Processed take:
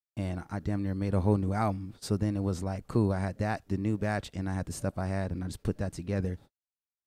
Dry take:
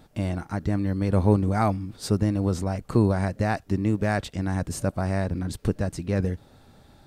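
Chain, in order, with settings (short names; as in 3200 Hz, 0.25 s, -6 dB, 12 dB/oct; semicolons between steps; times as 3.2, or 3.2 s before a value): gate -41 dBFS, range -57 dB; gain -6 dB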